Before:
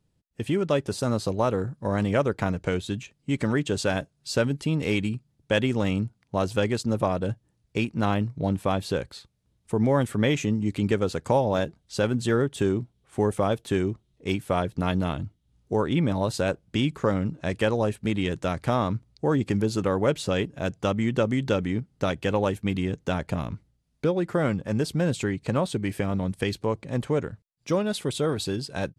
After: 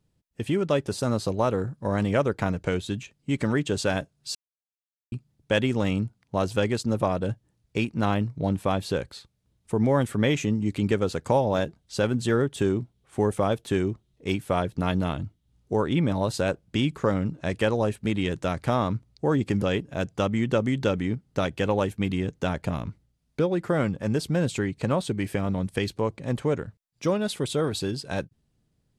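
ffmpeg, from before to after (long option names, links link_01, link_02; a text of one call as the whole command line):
ffmpeg -i in.wav -filter_complex "[0:a]asplit=4[link_01][link_02][link_03][link_04];[link_01]atrim=end=4.35,asetpts=PTS-STARTPTS,afade=type=out:start_time=4.346:duration=0.004:curve=hsin[link_05];[link_02]atrim=start=4.35:end=5.12,asetpts=PTS-STARTPTS,volume=0[link_06];[link_03]atrim=start=5.12:end=19.622,asetpts=PTS-STARTPTS,afade=type=in:duration=0.004:curve=hsin[link_07];[link_04]atrim=start=20.268[link_08];[link_05][link_06][link_07]concat=n=3:v=0:a=1[link_09];[link_09][link_08]acrossfade=duration=0.004:curve1=hsin:curve2=hsin" out.wav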